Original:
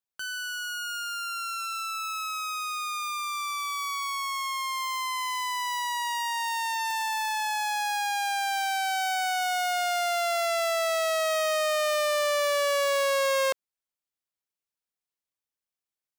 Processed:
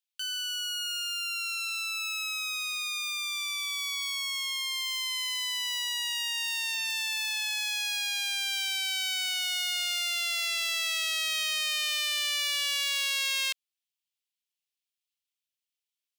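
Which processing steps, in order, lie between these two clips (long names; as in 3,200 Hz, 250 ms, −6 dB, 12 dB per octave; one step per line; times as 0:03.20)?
high-pass with resonance 2,900 Hz, resonance Q 2.1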